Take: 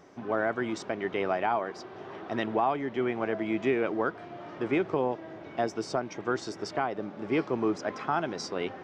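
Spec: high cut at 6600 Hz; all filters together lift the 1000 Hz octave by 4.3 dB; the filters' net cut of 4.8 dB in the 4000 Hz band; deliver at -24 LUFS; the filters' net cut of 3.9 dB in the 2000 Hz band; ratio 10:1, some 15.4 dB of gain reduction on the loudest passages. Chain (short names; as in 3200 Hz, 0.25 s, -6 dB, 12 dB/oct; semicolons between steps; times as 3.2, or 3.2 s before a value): LPF 6600 Hz; bell 1000 Hz +8 dB; bell 2000 Hz -8.5 dB; bell 4000 Hz -3.5 dB; compressor 10:1, threshold -35 dBFS; gain +16.5 dB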